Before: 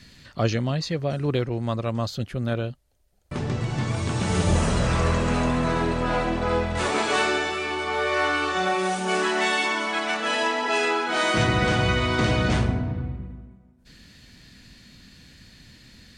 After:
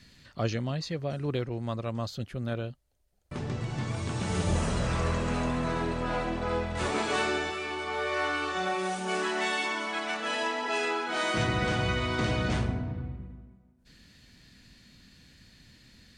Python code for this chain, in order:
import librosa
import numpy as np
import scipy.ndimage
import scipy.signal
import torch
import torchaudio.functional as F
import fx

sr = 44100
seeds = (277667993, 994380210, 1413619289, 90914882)

y = fx.low_shelf(x, sr, hz=210.0, db=7.5, at=(6.81, 7.51))
y = y * librosa.db_to_amplitude(-6.5)